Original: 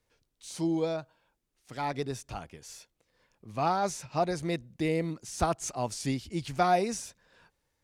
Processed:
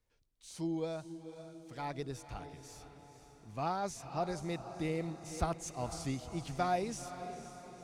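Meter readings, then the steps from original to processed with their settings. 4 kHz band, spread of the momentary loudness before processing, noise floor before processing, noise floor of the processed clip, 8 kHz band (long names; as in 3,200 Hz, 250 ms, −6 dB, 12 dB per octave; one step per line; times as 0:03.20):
−7.5 dB, 17 LU, −79 dBFS, −69 dBFS, −7.5 dB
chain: low-shelf EQ 80 Hz +10 dB
feedback delay with all-pass diffusion 493 ms, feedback 54%, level −11 dB
level −8 dB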